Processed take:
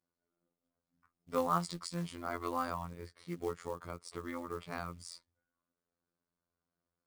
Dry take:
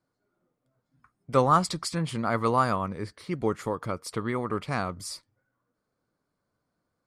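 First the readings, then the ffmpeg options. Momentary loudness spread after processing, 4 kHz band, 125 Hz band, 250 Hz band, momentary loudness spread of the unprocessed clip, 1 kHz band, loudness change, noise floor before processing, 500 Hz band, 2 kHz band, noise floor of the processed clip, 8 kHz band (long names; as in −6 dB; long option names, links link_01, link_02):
13 LU, −10.5 dB, −13.0 dB, −11.0 dB, 12 LU, −11.0 dB, −11.0 dB, −81 dBFS, −11.0 dB, −11.0 dB, below −85 dBFS, −10.5 dB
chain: -af "aresample=22050,aresample=44100,afftfilt=real='hypot(re,im)*cos(PI*b)':imag='0':win_size=2048:overlap=0.75,acrusher=bits=5:mode=log:mix=0:aa=0.000001,volume=-8dB"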